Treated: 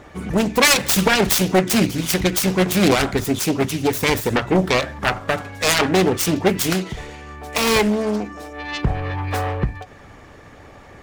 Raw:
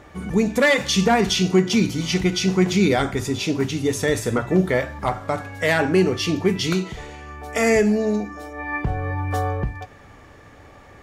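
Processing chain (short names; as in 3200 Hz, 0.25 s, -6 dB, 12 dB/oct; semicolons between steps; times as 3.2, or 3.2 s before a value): self-modulated delay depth 0.55 ms; harmonic-percussive split percussive +6 dB; ending taper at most 250 dB/s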